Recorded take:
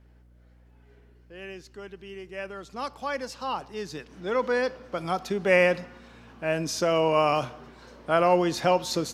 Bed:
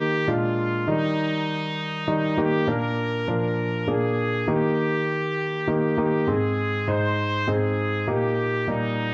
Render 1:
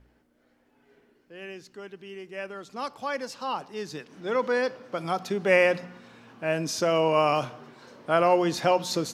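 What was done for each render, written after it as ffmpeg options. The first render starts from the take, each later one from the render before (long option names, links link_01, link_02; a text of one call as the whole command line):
ffmpeg -i in.wav -af "bandreject=frequency=60:width_type=h:width=4,bandreject=frequency=120:width_type=h:width=4,bandreject=frequency=180:width_type=h:width=4" out.wav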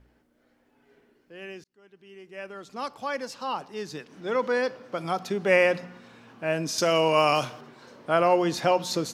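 ffmpeg -i in.wav -filter_complex "[0:a]asettb=1/sr,asplit=3[link_01][link_02][link_03];[link_01]atrim=end=6.784[link_04];[link_02]atrim=start=6.78:end=7.61,asetpts=PTS-STARTPTS,afade=type=in:duration=0.004:curve=qsin,afade=type=out:start_time=0.826:duration=0.004:curve=qsin,highshelf=frequency=2500:gain=9.5[link_05];[link_03]atrim=start=7.606[link_06];[link_04][link_05]acrossfade=duration=0.004:curve1=hsin:curve2=qsin[link_07];[link_07][link_06]acrossfade=duration=0.004:curve1=qsin:curve2=hsin,asplit=2[link_08][link_09];[link_08]atrim=end=1.64,asetpts=PTS-STARTPTS,afade=type=out:start_time=1.636:duration=0.004:curve=hsin[link_10];[link_09]atrim=start=1.64,asetpts=PTS-STARTPTS,afade=type=in:duration=1.09[link_11];[link_10][link_11]concat=n=2:v=0:a=1" out.wav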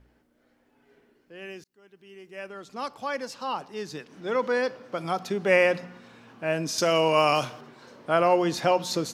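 ffmpeg -i in.wav -filter_complex "[0:a]asettb=1/sr,asplit=3[link_01][link_02][link_03];[link_01]atrim=end=1.454[link_04];[link_02]atrim=start=1.45:end=2.48,asetpts=PTS-STARTPTS,afade=type=in:duration=0.004:curve=qsin,afade=type=out:start_time=1.026:duration=0.004:curve=qsin,highshelf=frequency=8800:gain=7.5[link_05];[link_03]atrim=start=2.476[link_06];[link_04][link_05]acrossfade=duration=0.004:curve1=hsin:curve2=qsin[link_07];[link_07][link_06]acrossfade=duration=0.004:curve1=qsin:curve2=hsin" out.wav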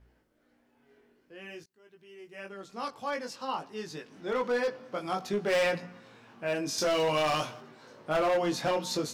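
ffmpeg -i in.wav -af "flanger=delay=18:depth=3.5:speed=0.52,asoftclip=type=hard:threshold=-23dB" out.wav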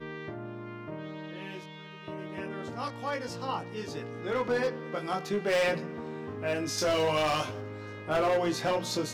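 ffmpeg -i in.wav -i bed.wav -filter_complex "[1:a]volume=-17dB[link_01];[0:a][link_01]amix=inputs=2:normalize=0" out.wav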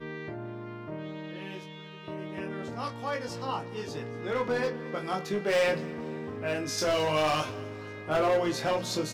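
ffmpeg -i in.wav -filter_complex "[0:a]asplit=2[link_01][link_02];[link_02]adelay=26,volume=-11dB[link_03];[link_01][link_03]amix=inputs=2:normalize=0,aecho=1:1:236|472|708|944:0.0891|0.0472|0.025|0.0133" out.wav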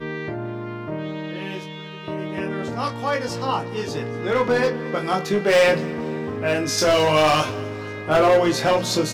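ffmpeg -i in.wav -af "volume=9.5dB" out.wav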